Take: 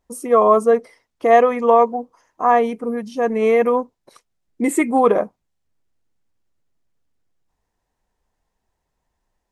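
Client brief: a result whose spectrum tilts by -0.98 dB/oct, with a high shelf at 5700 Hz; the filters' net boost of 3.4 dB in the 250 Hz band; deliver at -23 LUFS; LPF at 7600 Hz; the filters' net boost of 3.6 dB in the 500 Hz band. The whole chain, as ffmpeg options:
-af "lowpass=7.6k,equalizer=f=250:t=o:g=3,equalizer=f=500:t=o:g=3.5,highshelf=f=5.7k:g=-8.5,volume=-8.5dB"

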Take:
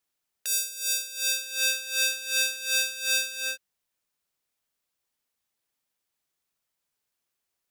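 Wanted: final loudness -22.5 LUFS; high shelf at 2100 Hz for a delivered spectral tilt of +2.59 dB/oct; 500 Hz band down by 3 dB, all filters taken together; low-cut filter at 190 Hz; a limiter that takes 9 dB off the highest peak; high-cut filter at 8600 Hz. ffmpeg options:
-af "highpass=190,lowpass=8.6k,equalizer=f=500:t=o:g=-3.5,highshelf=f=2.1k:g=8.5,volume=3dB,alimiter=limit=-12.5dB:level=0:latency=1"

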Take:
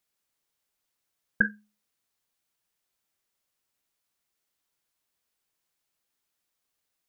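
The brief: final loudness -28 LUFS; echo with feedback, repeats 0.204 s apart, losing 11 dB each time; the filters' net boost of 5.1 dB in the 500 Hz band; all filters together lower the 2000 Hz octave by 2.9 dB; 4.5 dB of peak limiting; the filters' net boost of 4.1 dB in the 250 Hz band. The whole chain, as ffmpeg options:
-af "equalizer=f=250:t=o:g=4.5,equalizer=f=500:t=o:g=4.5,equalizer=f=2k:t=o:g=-4.5,alimiter=limit=-13dB:level=0:latency=1,aecho=1:1:204|408|612:0.282|0.0789|0.0221,volume=6.5dB"

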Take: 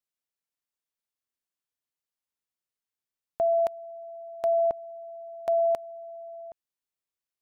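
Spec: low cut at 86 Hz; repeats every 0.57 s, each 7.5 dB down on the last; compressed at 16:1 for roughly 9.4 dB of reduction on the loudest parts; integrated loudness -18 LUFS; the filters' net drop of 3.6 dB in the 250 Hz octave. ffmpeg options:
-af "highpass=86,equalizer=f=250:t=o:g=-5,acompressor=threshold=-31dB:ratio=16,aecho=1:1:570|1140|1710|2280|2850:0.422|0.177|0.0744|0.0312|0.0131,volume=20.5dB"

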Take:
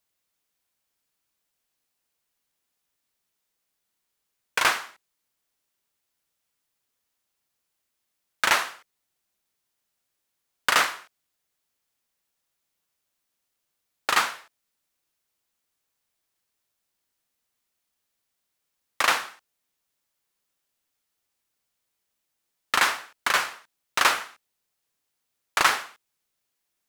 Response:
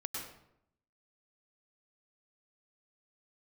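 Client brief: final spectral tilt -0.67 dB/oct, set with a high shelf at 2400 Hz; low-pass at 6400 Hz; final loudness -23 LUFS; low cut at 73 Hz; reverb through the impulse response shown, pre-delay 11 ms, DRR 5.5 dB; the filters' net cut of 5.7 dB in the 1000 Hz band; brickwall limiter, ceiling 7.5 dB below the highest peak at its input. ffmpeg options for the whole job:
-filter_complex "[0:a]highpass=73,lowpass=6.4k,equalizer=f=1k:t=o:g=-6,highshelf=f=2.4k:g=-6,alimiter=limit=-18dB:level=0:latency=1,asplit=2[a][b];[1:a]atrim=start_sample=2205,adelay=11[c];[b][c]afir=irnorm=-1:irlink=0,volume=-6.5dB[d];[a][d]amix=inputs=2:normalize=0,volume=9.5dB"

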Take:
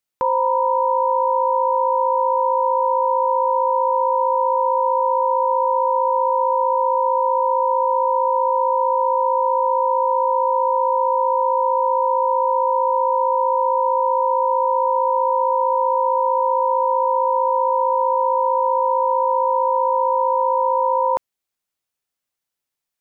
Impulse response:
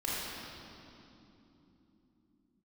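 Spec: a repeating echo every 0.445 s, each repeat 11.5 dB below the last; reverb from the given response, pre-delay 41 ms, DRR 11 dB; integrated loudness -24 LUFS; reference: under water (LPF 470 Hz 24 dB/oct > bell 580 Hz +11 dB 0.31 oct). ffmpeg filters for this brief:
-filter_complex "[0:a]aecho=1:1:445|890|1335:0.266|0.0718|0.0194,asplit=2[a][b];[1:a]atrim=start_sample=2205,adelay=41[c];[b][c]afir=irnorm=-1:irlink=0,volume=-17.5dB[d];[a][d]amix=inputs=2:normalize=0,lowpass=f=470:w=0.5412,lowpass=f=470:w=1.3066,equalizer=f=580:t=o:w=0.31:g=11"

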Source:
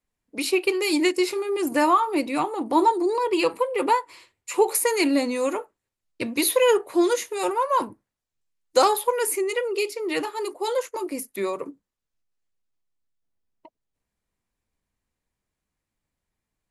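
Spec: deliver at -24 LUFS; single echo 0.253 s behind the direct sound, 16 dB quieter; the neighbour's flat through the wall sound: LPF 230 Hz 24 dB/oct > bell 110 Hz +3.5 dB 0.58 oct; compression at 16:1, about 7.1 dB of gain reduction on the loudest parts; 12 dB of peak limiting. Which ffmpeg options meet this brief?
-af "acompressor=threshold=-20dB:ratio=16,alimiter=limit=-22.5dB:level=0:latency=1,lowpass=f=230:w=0.5412,lowpass=f=230:w=1.3066,equalizer=f=110:t=o:w=0.58:g=3.5,aecho=1:1:253:0.158,volume=21.5dB"

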